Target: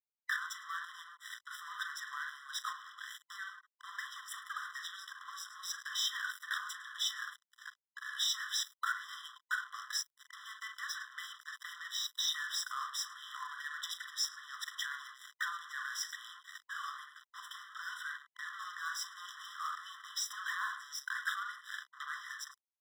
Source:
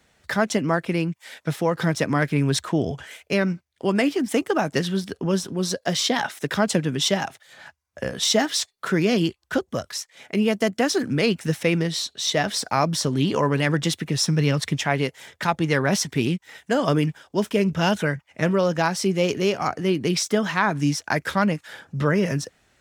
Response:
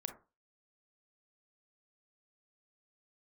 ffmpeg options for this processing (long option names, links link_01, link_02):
-filter_complex "[0:a]highshelf=frequency=5100:gain=-7.5,aecho=1:1:107:0.112,acompressor=threshold=-28dB:ratio=6,asettb=1/sr,asplit=3[link_01][link_02][link_03];[link_01]atrim=end=10.414[link_04];[link_02]atrim=start=10.41:end=12.43,asetpts=PTS-STARTPTS,afade=type=in:duration=0.004:curve=qsin,afade=type=out:start_time=2.016:duration=0.004:curve=qsin,highpass=440,lowpass=6700[link_05];[link_03]atrim=start=12.426[link_06];[link_04][link_05]acrossfade=duration=0.004:curve1=hsin:curve2=qsin[link_07];[link_07][link_06]acrossfade=duration=0.004:curve1=qsin:curve2=hsin[link_08];[1:a]atrim=start_sample=2205,afade=type=out:start_time=0.14:duration=0.01,atrim=end_sample=6615[link_09];[link_08][link_09]afir=irnorm=-1:irlink=0,aeval=exprs='sgn(val(0))*max(abs(val(0))-0.00562,0)':channel_layout=same,alimiter=level_in=1dB:limit=-24dB:level=0:latency=1:release=64,volume=-1dB,asoftclip=type=tanh:threshold=-35dB,afftfilt=real='re*eq(mod(floor(b*sr/1024/1000),2),1)':imag='im*eq(mod(floor(b*sr/1024/1000),2),1)':win_size=1024:overlap=0.75,volume=9dB"